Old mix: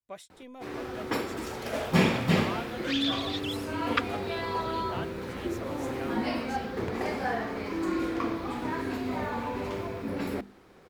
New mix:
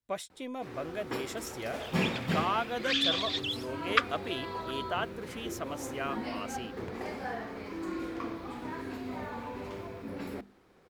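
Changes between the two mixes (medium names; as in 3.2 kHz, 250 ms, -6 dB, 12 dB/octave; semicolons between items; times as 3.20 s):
speech +7.5 dB; first sound -7.5 dB; reverb: on, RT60 0.30 s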